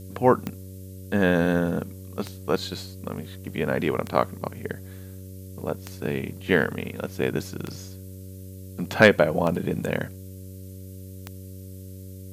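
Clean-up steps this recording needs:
click removal
hum removal 94.5 Hz, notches 6
noise reduction from a noise print 30 dB

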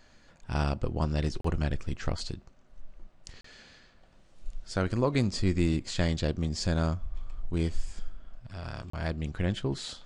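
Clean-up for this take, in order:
repair the gap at 0:01.41/0:03.41/0:08.90, 34 ms

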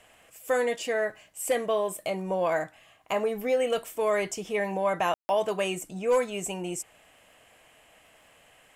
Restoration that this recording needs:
click removal
ambience match 0:05.14–0:05.29

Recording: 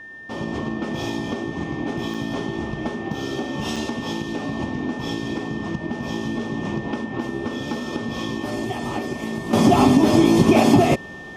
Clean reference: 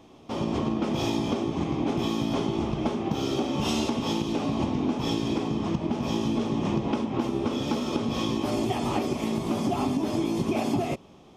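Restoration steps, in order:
notch filter 1,800 Hz, Q 30
repair the gap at 0:02.14/0:03.76, 5.1 ms
level correction −12 dB, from 0:09.53

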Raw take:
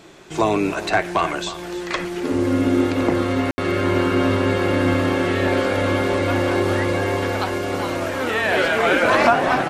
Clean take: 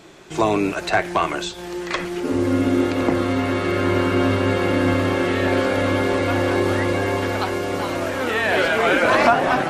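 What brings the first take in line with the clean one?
ambience match 0:03.51–0:03.58
echo removal 312 ms −14.5 dB

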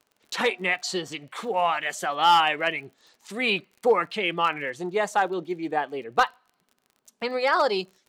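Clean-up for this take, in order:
clipped peaks rebuilt −11.5 dBFS
click removal

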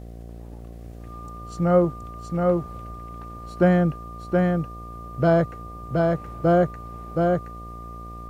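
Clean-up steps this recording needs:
click removal
hum removal 57.9 Hz, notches 13
notch filter 1,200 Hz, Q 30
echo removal 722 ms −3 dB

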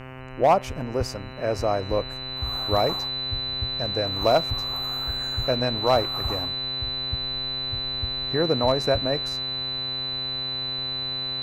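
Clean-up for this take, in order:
clipped peaks rebuilt −10.5 dBFS
hum removal 129.9 Hz, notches 23
notch filter 4,000 Hz, Q 30

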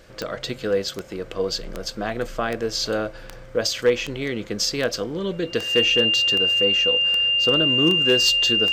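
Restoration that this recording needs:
clipped peaks rebuilt −9.5 dBFS
click removal
notch filter 2,800 Hz, Q 30

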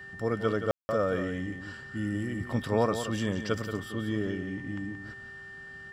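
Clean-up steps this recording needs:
hum removal 392 Hz, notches 26
notch filter 1,800 Hz, Q 30
ambience match 0:00.71–0:00.89
echo removal 176 ms −9.5 dB

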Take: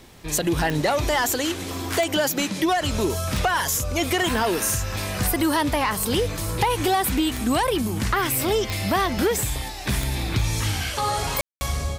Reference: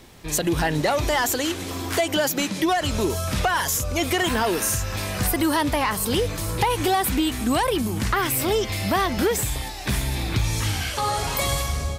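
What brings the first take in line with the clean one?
click removal
ambience match 0:11.41–0:11.61

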